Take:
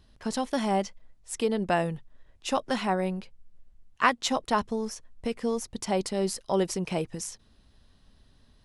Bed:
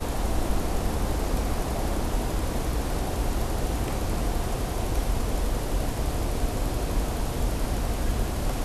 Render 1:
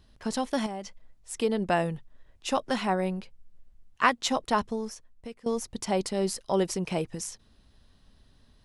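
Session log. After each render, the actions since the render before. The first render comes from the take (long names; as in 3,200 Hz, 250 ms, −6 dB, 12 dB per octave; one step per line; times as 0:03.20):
0:00.66–0:01.40: downward compressor, threshold −32 dBFS
0:04.60–0:05.46: fade out, to −17.5 dB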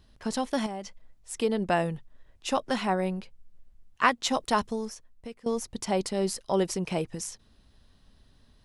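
0:04.33–0:04.86: high-shelf EQ 4,400 Hz +7 dB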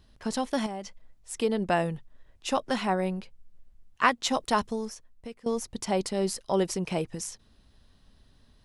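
no processing that can be heard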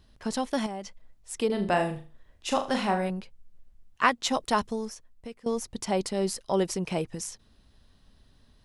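0:01.46–0:03.10: flutter between parallel walls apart 6.7 metres, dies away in 0.35 s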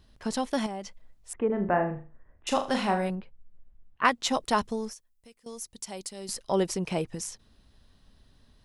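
0:01.33–0:02.47: inverse Chebyshev low-pass filter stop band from 4,800 Hz, stop band 50 dB
0:03.15–0:04.05: high-frequency loss of the air 430 metres
0:04.93–0:06.29: first-order pre-emphasis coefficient 0.8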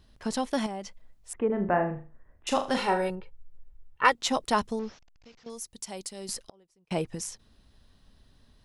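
0:02.77–0:04.15: comb filter 2.2 ms, depth 71%
0:04.79–0:05.50: linear delta modulator 32 kbit/s, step −52.5 dBFS
0:06.45–0:06.91: gate with flip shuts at −30 dBFS, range −36 dB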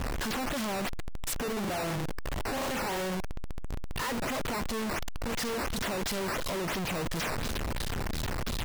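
sign of each sample alone
sample-and-hold swept by an LFO 8×, swing 160% 2.9 Hz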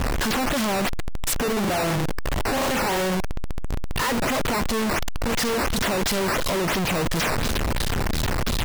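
level +9 dB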